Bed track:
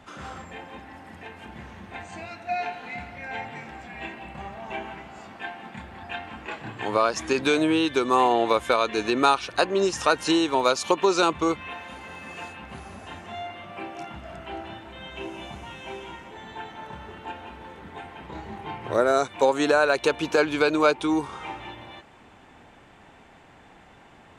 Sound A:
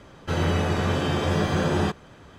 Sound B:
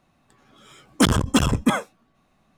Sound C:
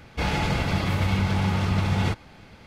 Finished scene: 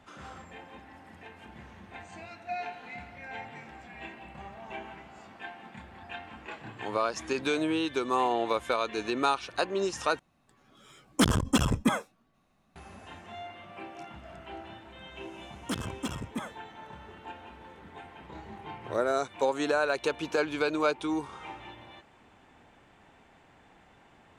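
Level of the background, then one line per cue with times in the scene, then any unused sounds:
bed track -7 dB
10.19 s: replace with B -6 dB
14.69 s: add B -16.5 dB + high-pass 55 Hz
not used: A, C

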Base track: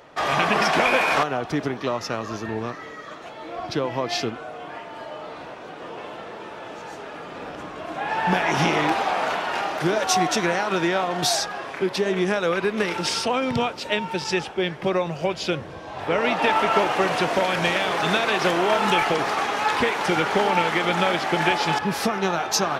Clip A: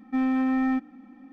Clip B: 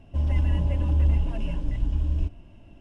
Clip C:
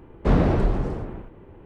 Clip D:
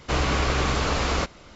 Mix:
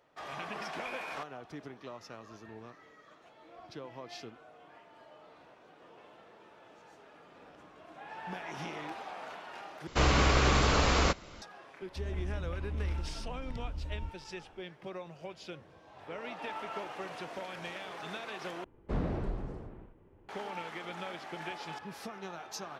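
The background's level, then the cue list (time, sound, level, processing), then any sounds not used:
base track -20 dB
9.87 s: replace with D -2 dB
11.82 s: add B -14 dB
18.64 s: replace with C -14.5 dB
not used: A

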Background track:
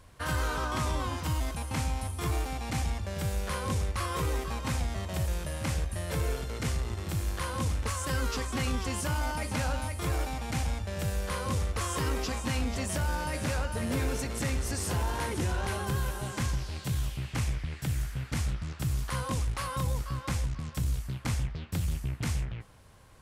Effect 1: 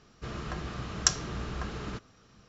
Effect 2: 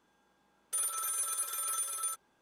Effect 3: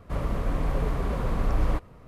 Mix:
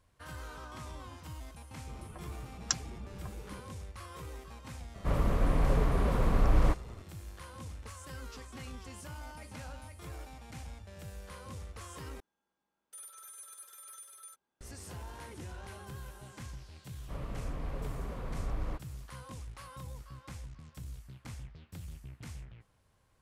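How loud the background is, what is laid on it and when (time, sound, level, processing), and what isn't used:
background track -14.5 dB
1.64 s: add 1 -5.5 dB + expander on every frequency bin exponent 2
4.95 s: add 3 -0.5 dB
12.20 s: replace with 2 -15.5 dB
16.99 s: add 3 -12 dB

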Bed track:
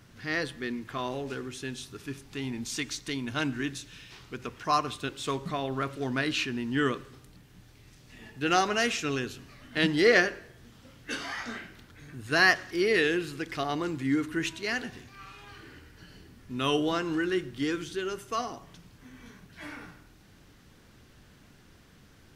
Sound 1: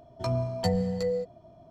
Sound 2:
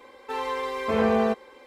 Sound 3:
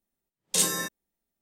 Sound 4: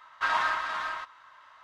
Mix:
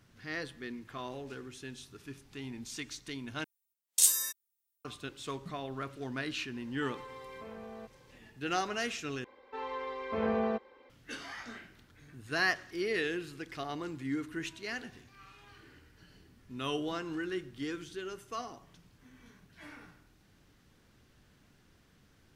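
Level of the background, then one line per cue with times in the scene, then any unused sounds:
bed track -8 dB
3.44 s: replace with 3 -0.5 dB + differentiator
6.53 s: add 2 -13 dB + compression, threshold -30 dBFS
9.24 s: replace with 2 -8.5 dB + distance through air 170 m
not used: 1, 4

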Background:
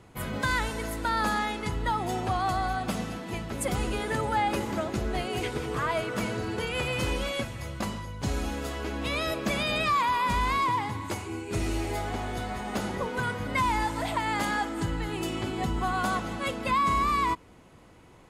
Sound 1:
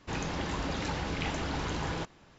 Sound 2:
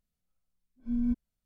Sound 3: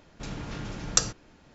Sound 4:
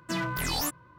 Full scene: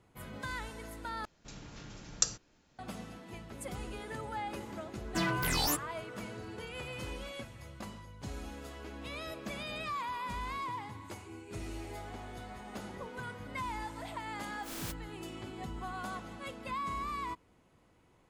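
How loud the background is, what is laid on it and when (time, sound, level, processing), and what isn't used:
background -12.5 dB
1.25 s: replace with 3 -12.5 dB + treble shelf 4.6 kHz +10.5 dB
5.06 s: add 4 -1 dB
13.78 s: add 2 -15 dB + spectral contrast reduction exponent 0.16
not used: 1

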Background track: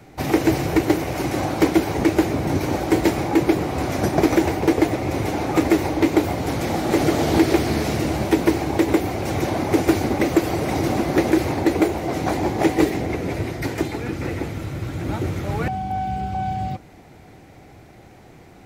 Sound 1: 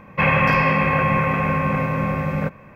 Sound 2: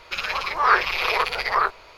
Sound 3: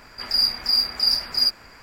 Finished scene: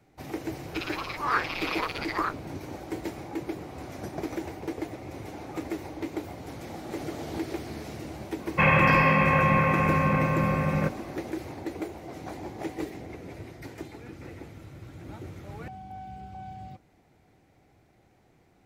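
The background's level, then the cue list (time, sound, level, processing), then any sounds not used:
background track -16.5 dB
0.63 s: add 2 -9 dB + bit crusher 12-bit
8.40 s: add 1 -3 dB
not used: 3

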